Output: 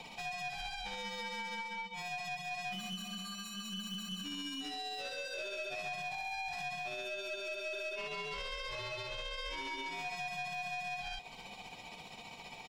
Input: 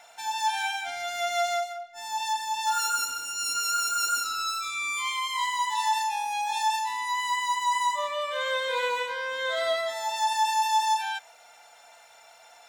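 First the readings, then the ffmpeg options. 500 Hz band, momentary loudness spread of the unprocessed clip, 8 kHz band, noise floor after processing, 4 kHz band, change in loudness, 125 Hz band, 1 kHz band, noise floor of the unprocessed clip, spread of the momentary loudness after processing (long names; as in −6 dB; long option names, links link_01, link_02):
−11.0 dB, 5 LU, −19.5 dB, −51 dBFS, −9.5 dB, −12.5 dB, can't be measured, −17.0 dB, −54 dBFS, 4 LU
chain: -filter_complex "[0:a]highpass=460,bandreject=frequency=7000:width=11,acompressor=threshold=-38dB:ratio=6,tremolo=f=15:d=0.47,aecho=1:1:262|524|786|1048:0.112|0.0561|0.0281|0.014,asplit=2[link_01][link_02];[link_02]highpass=frequency=720:poles=1,volume=16dB,asoftclip=type=tanh:threshold=-30.5dB[link_03];[link_01][link_03]amix=inputs=2:normalize=0,lowpass=frequency=1900:poles=1,volume=-6dB,aeval=exprs='val(0)*sin(2*PI*1600*n/s)':channel_layout=same,aeval=exprs='(tanh(63.1*val(0)+0.25)-tanh(0.25))/63.1':channel_layout=same,volume=3dB"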